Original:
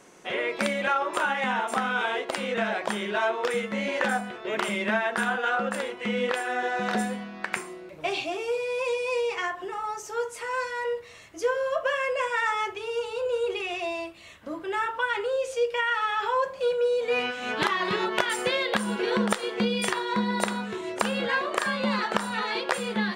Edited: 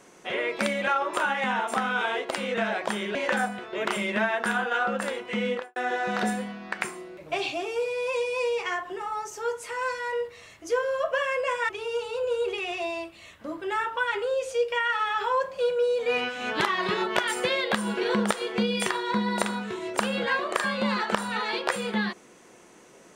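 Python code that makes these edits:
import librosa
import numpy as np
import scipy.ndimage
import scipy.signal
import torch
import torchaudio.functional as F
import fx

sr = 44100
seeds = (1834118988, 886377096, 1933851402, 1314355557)

y = fx.studio_fade_out(x, sr, start_s=6.17, length_s=0.31)
y = fx.edit(y, sr, fx.cut(start_s=3.15, length_s=0.72),
    fx.cut(start_s=12.41, length_s=0.3), tone=tone)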